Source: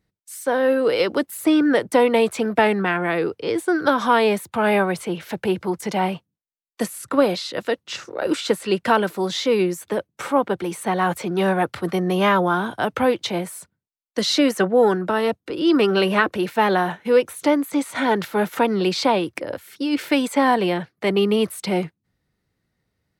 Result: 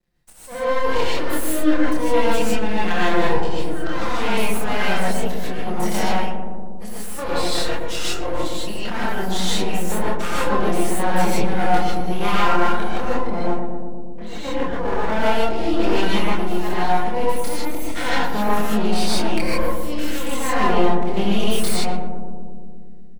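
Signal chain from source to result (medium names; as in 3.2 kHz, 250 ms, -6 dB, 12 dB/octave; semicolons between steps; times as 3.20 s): 12.98–15.18 s: low-pass 1.5 kHz -> 3.3 kHz 24 dB/octave; reverb removal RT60 1.9 s; comb 5.8 ms, depth 64%; level rider gain up to 11 dB; slow attack 332 ms; compression 6:1, threshold -20 dBFS, peak gain reduction 11.5 dB; chorus voices 6, 0.41 Hz, delay 26 ms, depth 3.2 ms; half-wave rectifier; filtered feedback delay 118 ms, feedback 81%, low-pass 960 Hz, level -5 dB; gated-style reverb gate 180 ms rising, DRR -6.5 dB; trim +2.5 dB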